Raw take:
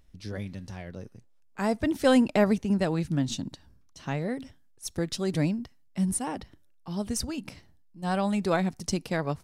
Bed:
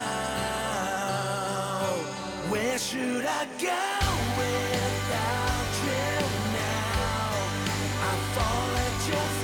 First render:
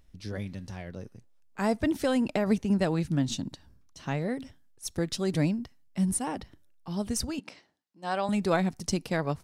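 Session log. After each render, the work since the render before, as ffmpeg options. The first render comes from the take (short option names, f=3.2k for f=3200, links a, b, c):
-filter_complex "[0:a]asettb=1/sr,asplit=3[a][b][c];[a]atrim=end=1.984[d];[b]atrim=start=1.98:end=2.5,asetpts=PTS-STARTPTS,afade=t=in:d=0.004:c=qsin,afade=t=out:st=0.516:d=0.004:c=qsin,acompressor=threshold=-22dB:ratio=4:attack=3.2:release=140:knee=1:detection=peak[e];[c]atrim=start=2.496[f];[d][e]acrossfade=d=0.004:c1=hsin:c2=qsin[g];[g][f]acrossfade=d=0.004:c1=qsin:c2=hsin,asettb=1/sr,asplit=3[h][i][j];[h]atrim=end=7.394[k];[i]atrim=start=7.39:end=8.29,asetpts=PTS-STARTPTS,afade=t=in:d=0.004:c=qsin,afade=t=out:st=0.896:d=0.004:c=qsin,highpass=360,lowpass=6.6k[l];[j]atrim=start=8.286[m];[k][l]acrossfade=d=0.004:c1=hsin:c2=qsin[n];[n][m]acrossfade=d=0.004:c1=qsin:c2=hsin"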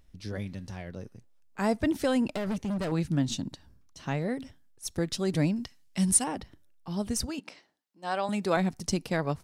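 -filter_complex "[0:a]asettb=1/sr,asplit=3[a][b][c];[a]atrim=end=2.334[d];[b]atrim=start=2.33:end=2.92,asetpts=PTS-STARTPTS,afade=t=in:d=0.004:c=qsin,afade=t=out:st=0.586:d=0.004:c=qsin,volume=28dB,asoftclip=hard,volume=-28dB[e];[c]atrim=start=2.916[f];[d][e]acrossfade=d=0.004:c1=hsin:c2=qsin[g];[g][f]acrossfade=d=0.004:c1=qsin:c2=hsin,asettb=1/sr,asplit=3[h][i][j];[h]atrim=end=5.564[k];[i]atrim=start=5.56:end=6.24,asetpts=PTS-STARTPTS,afade=t=in:d=0.004:c=qsin,afade=t=out:st=0.676:d=0.004:c=qsin,equalizer=f=5.4k:w=0.31:g=10.5[l];[j]atrim=start=6.236[m];[k][l]acrossfade=d=0.004:c1=hsin:c2=qsin[n];[n][m]acrossfade=d=0.004:c1=qsin:c2=hsin,asettb=1/sr,asplit=3[o][p][q];[o]atrim=end=7.264[r];[p]atrim=start=7.26:end=8.57,asetpts=PTS-STARTPTS,afade=t=in:d=0.004:c=qsin,afade=t=out:st=1.306:d=0.004:c=qsin,highpass=f=220:p=1[s];[q]atrim=start=8.566[t];[r][s]acrossfade=d=0.004:c1=hsin:c2=qsin[u];[u][t]acrossfade=d=0.004:c1=qsin:c2=hsin"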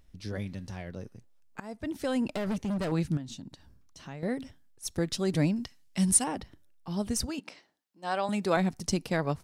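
-filter_complex "[0:a]asettb=1/sr,asplit=3[a][b][c];[a]atrim=end=3.174[d];[b]atrim=start=3.17:end=4.23,asetpts=PTS-STARTPTS,afade=t=in:d=0.004:c=qsin,afade=t=out:st=1.056:d=0.004:c=qsin,acompressor=threshold=-47dB:ratio=2:attack=3.2:release=140:knee=1:detection=peak[e];[c]atrim=start=4.226[f];[d][e]acrossfade=d=0.004:c1=hsin:c2=qsin[g];[g][f]acrossfade=d=0.004:c1=qsin:c2=hsin,asplit=2[h][i];[h]atrim=end=1.6,asetpts=PTS-STARTPTS,afade=t=out:st=1.596:d=0.004:c=hsin:silence=0.0707946[j];[i]atrim=start=1.6,asetpts=PTS-STARTPTS,afade=t=in:d=0.81:silence=0.0707946[k];[j][k]concat=n=2:v=0:a=1"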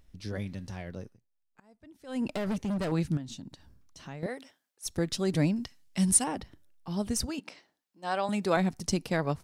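-filter_complex "[0:a]asettb=1/sr,asplit=3[a][b][c];[a]atrim=end=4.264[d];[b]atrim=start=4.26:end=4.86,asetpts=PTS-STARTPTS,afade=t=in:d=0.004:c=qsin,afade=t=out:st=0.596:d=0.004:c=qsin,highpass=500[e];[c]atrim=start=4.856[f];[d][e]acrossfade=d=0.004:c1=hsin:c2=qsin[g];[g][f]acrossfade=d=0.004:c1=qsin:c2=hsin,asplit=3[h][i][j];[h]atrim=end=1.19,asetpts=PTS-STARTPTS,afade=t=out:st=1:d=0.19:silence=0.11885[k];[i]atrim=start=1.19:end=2.06,asetpts=PTS-STARTPTS,volume=-18.5dB[l];[j]atrim=start=2.06,asetpts=PTS-STARTPTS,afade=t=in:d=0.19:silence=0.11885[m];[k][l][m]concat=n=3:v=0:a=1"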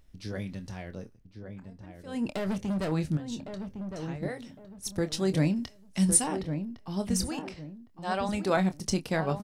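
-filter_complex "[0:a]asplit=2[a][b];[b]adelay=26,volume=-11dB[c];[a][c]amix=inputs=2:normalize=0,asplit=2[d][e];[e]adelay=1109,lowpass=f=1.2k:p=1,volume=-7dB,asplit=2[f][g];[g]adelay=1109,lowpass=f=1.2k:p=1,volume=0.31,asplit=2[h][i];[i]adelay=1109,lowpass=f=1.2k:p=1,volume=0.31,asplit=2[j][k];[k]adelay=1109,lowpass=f=1.2k:p=1,volume=0.31[l];[d][f][h][j][l]amix=inputs=5:normalize=0"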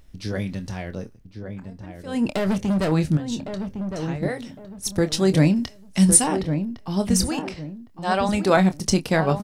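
-af "volume=8.5dB,alimiter=limit=-2dB:level=0:latency=1"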